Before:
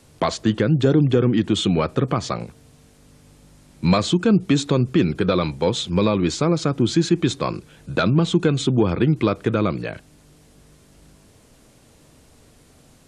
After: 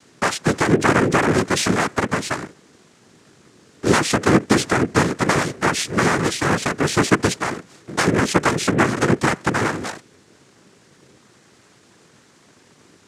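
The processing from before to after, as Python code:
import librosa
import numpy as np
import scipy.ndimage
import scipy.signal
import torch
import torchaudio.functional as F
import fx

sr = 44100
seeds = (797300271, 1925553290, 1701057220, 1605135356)

y = fx.cycle_switch(x, sr, every=3, mode='inverted')
y = fx.noise_vocoder(y, sr, seeds[0], bands=3)
y = F.gain(torch.from_numpy(y), 1.0).numpy()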